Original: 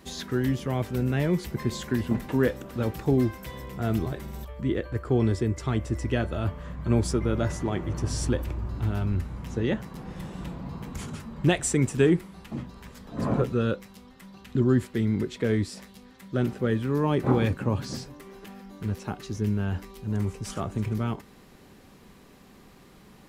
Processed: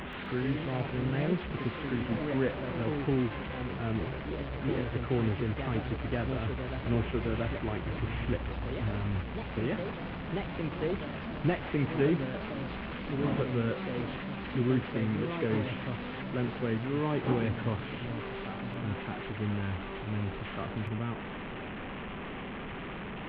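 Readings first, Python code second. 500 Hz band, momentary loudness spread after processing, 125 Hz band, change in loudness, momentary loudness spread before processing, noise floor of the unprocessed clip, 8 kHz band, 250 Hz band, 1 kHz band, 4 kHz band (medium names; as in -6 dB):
-4.5 dB, 8 LU, -5.5 dB, -5.5 dB, 14 LU, -53 dBFS, under -40 dB, -5.0 dB, -1.5 dB, -3.0 dB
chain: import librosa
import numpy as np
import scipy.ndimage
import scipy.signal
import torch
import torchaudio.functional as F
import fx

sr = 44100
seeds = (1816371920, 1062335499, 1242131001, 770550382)

y = fx.delta_mod(x, sr, bps=16000, step_db=-27.0)
y = fx.echo_pitch(y, sr, ms=130, semitones=2, count=3, db_per_echo=-6.0)
y = F.gain(torch.from_numpy(y), -6.5).numpy()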